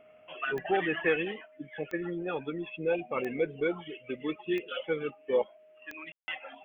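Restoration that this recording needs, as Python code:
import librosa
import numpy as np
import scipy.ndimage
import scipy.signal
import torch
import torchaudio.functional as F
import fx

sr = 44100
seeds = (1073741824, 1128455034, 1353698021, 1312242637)

y = fx.fix_declick_ar(x, sr, threshold=10.0)
y = fx.notch(y, sr, hz=620.0, q=30.0)
y = fx.fix_ambience(y, sr, seeds[0], print_start_s=0.0, print_end_s=0.5, start_s=6.12, end_s=6.28)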